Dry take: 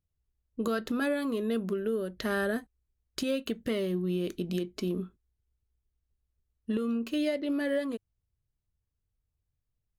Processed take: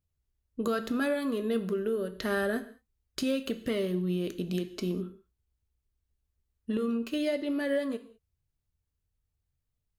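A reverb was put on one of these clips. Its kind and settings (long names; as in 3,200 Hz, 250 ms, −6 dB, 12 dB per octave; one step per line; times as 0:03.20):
reverb whose tail is shaped and stops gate 230 ms falling, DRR 10 dB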